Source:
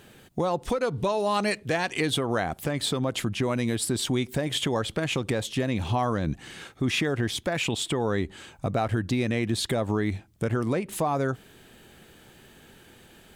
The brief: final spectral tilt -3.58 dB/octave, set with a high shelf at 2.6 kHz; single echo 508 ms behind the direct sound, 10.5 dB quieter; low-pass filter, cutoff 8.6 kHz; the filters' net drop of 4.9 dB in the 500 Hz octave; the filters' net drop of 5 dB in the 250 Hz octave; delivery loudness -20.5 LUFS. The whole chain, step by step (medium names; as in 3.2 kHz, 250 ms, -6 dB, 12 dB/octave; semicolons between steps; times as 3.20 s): low-pass 8.6 kHz; peaking EQ 250 Hz -5 dB; peaking EQ 500 Hz -5 dB; treble shelf 2.6 kHz +5.5 dB; delay 508 ms -10.5 dB; trim +7.5 dB